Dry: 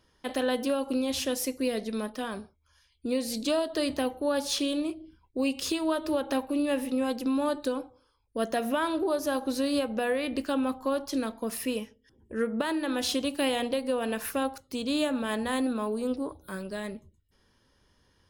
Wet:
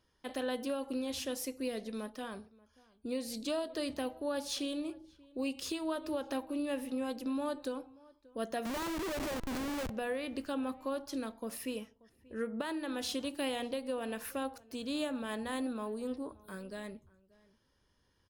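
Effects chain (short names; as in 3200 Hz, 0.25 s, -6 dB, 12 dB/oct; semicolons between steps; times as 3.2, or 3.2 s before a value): 8.65–9.9 Schmitt trigger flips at -32 dBFS; outdoor echo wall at 100 m, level -23 dB; gain -8 dB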